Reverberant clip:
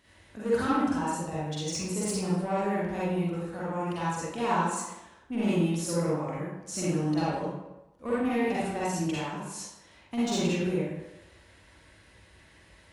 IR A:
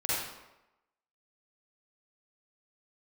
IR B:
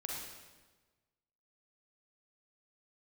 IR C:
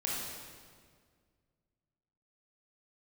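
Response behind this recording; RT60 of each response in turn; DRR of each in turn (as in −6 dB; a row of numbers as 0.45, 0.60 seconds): A; 0.95, 1.3, 1.9 seconds; −9.5, −2.5, −5.0 decibels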